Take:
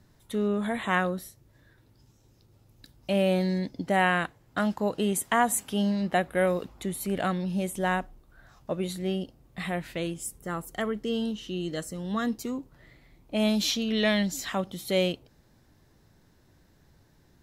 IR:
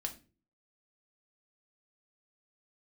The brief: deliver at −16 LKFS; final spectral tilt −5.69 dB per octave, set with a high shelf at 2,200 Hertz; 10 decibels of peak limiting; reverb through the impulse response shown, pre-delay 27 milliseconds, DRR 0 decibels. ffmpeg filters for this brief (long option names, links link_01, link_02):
-filter_complex "[0:a]highshelf=frequency=2200:gain=-8,alimiter=limit=-22dB:level=0:latency=1,asplit=2[link_01][link_02];[1:a]atrim=start_sample=2205,adelay=27[link_03];[link_02][link_03]afir=irnorm=-1:irlink=0,volume=0.5dB[link_04];[link_01][link_04]amix=inputs=2:normalize=0,volume=13dB"